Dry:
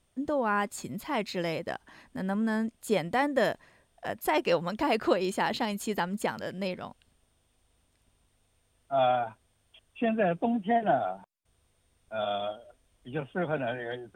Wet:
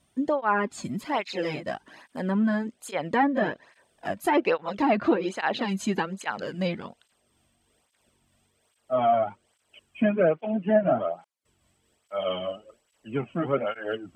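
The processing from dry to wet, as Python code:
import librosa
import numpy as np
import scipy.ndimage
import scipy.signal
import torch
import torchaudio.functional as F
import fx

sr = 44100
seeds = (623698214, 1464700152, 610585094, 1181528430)

y = fx.pitch_glide(x, sr, semitones=-2.0, runs='starting unshifted')
y = fx.env_lowpass_down(y, sr, base_hz=2000.0, full_db=-22.5)
y = fx.flanger_cancel(y, sr, hz=1.2, depth_ms=2.5)
y = y * 10.0 ** (7.5 / 20.0)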